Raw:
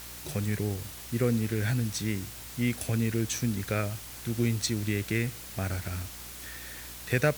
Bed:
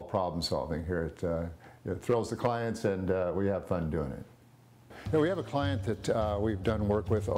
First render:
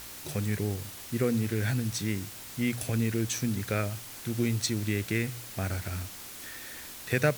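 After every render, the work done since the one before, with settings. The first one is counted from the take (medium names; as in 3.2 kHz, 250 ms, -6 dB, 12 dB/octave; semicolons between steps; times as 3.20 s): de-hum 60 Hz, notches 3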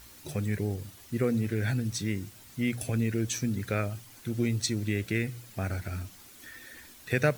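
noise reduction 10 dB, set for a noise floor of -44 dBFS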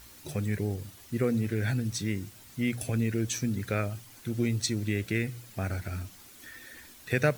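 no audible change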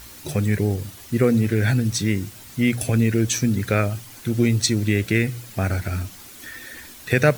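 trim +9.5 dB; peak limiter -3 dBFS, peak gain reduction 2.5 dB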